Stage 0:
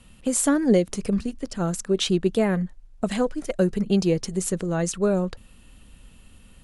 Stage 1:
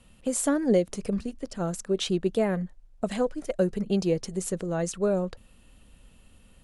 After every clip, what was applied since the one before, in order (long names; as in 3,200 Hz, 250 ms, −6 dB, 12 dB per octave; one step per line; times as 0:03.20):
parametric band 580 Hz +4.5 dB 1 octave
level −5.5 dB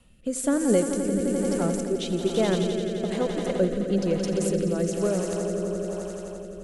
echo that builds up and dies away 86 ms, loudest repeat 5, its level −9.5 dB
rotating-speaker cabinet horn 1.1 Hz
level +1.5 dB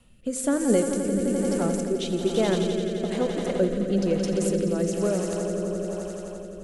convolution reverb RT60 0.85 s, pre-delay 8 ms, DRR 12.5 dB